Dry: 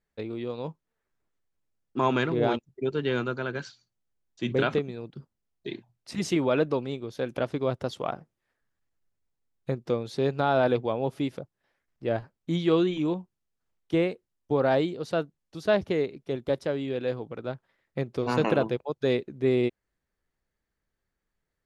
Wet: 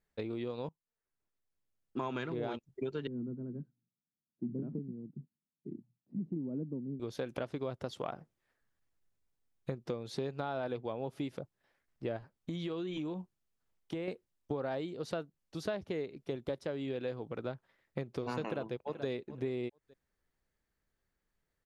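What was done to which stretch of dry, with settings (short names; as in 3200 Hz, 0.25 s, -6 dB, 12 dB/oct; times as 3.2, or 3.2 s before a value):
0.69–2.32 fade in, from -21 dB
3.07–7 Butterworth band-pass 200 Hz, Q 1.4
12.17–14.08 compressor, threshold -32 dBFS
18.43–19.07 echo throw 0.43 s, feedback 15%, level -18 dB
whole clip: compressor 6:1, threshold -33 dBFS; gain -1 dB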